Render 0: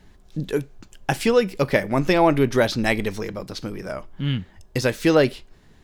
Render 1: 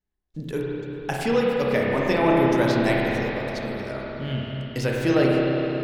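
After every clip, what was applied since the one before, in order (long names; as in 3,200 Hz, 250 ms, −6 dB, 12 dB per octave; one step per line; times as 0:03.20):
noise gate −42 dBFS, range −29 dB
spring reverb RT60 4 s, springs 30/51 ms, chirp 25 ms, DRR −4 dB
level −6.5 dB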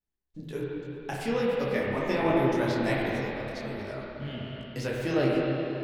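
micro pitch shift up and down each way 45 cents
level −2.5 dB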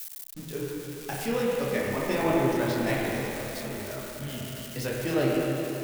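spike at every zero crossing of −29.5 dBFS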